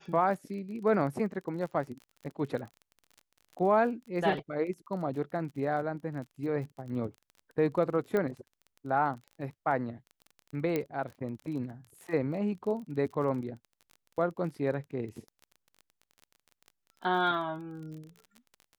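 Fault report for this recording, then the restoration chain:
crackle 30 per s -40 dBFS
8.17 s: pop -19 dBFS
10.76 s: pop -17 dBFS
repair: de-click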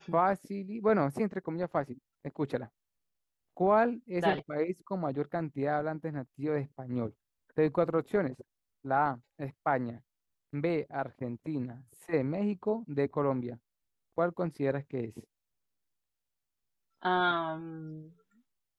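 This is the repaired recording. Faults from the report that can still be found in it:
nothing left

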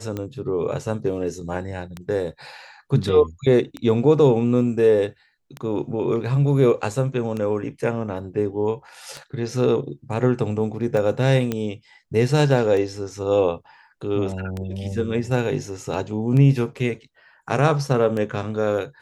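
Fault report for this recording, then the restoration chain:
tick 33 1/3 rpm -16 dBFS
11.52 s: pop -11 dBFS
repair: de-click

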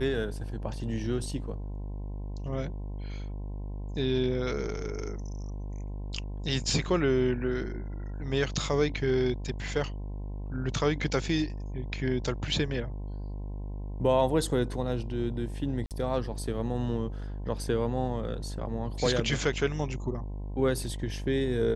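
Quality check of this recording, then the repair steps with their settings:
buzz 50 Hz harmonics 21 -36 dBFS
15.86–15.91 s: dropout 48 ms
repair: de-hum 50 Hz, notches 21; interpolate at 15.86 s, 48 ms

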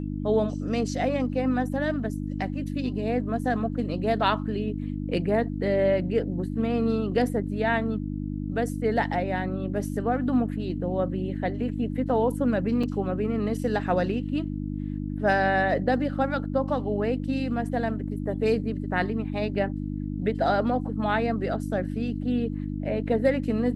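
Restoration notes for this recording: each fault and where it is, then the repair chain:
hum 50 Hz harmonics 6 -31 dBFS
12.83 s: dropout 4.9 ms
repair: de-hum 50 Hz, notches 6; interpolate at 12.83 s, 4.9 ms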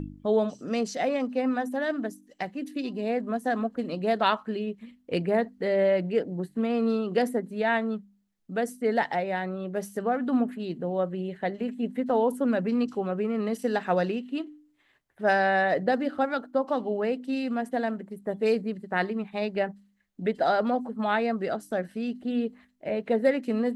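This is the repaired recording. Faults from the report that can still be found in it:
nothing left

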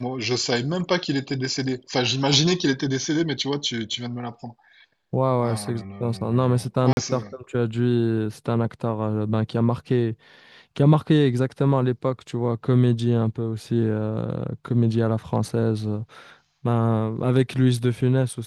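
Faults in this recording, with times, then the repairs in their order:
6.93–6.97 s: dropout 41 ms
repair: interpolate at 6.93 s, 41 ms

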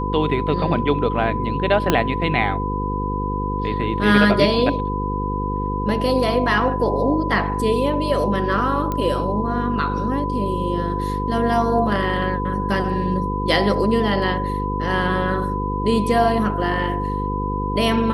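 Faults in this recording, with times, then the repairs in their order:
buzz 50 Hz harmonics 10 -25 dBFS
whine 1 kHz -25 dBFS
1.90 s: pop -2 dBFS
8.92 s: pop -12 dBFS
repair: de-click; band-stop 1 kHz, Q 30; de-hum 50 Hz, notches 10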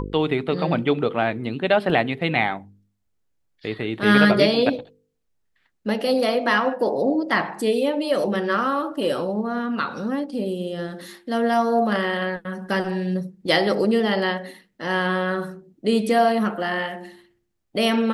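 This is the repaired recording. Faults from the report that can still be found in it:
1.90 s: pop

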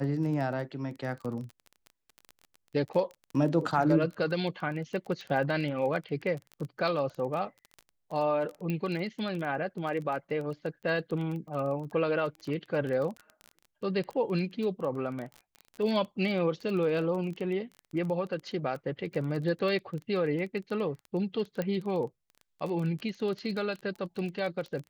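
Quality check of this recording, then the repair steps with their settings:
crackle 20 per s -35 dBFS
8.70 s: pop -21 dBFS
21.62 s: pop -20 dBFS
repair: de-click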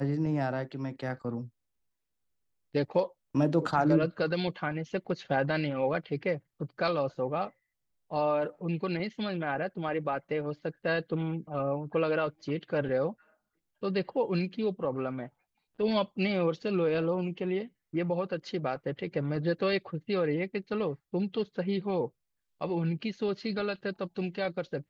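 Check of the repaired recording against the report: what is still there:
nothing left

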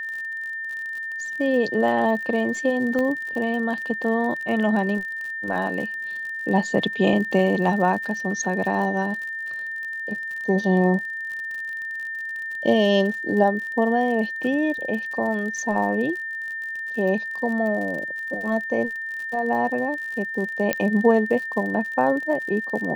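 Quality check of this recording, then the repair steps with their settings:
crackle 53 per s -31 dBFS
whine 1.8 kHz -28 dBFS
2.99 s: pop -15 dBFS
20.73 s: pop -7 dBFS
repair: de-click; band-stop 1.8 kHz, Q 30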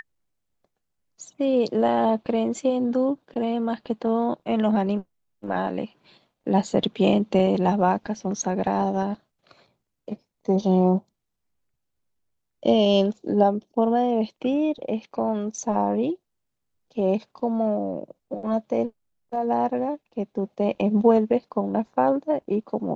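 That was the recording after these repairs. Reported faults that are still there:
nothing left

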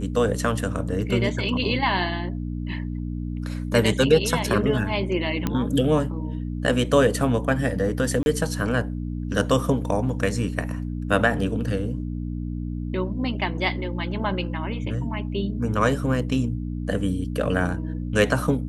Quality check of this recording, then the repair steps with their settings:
hum 60 Hz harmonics 5 -29 dBFS
5.47 s: pop -10 dBFS
8.23–8.26 s: dropout 31 ms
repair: de-click; de-hum 60 Hz, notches 5; interpolate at 8.23 s, 31 ms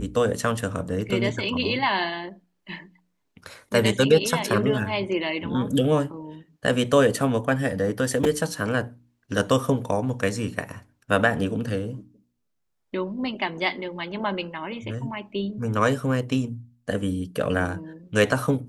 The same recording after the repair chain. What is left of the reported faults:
nothing left

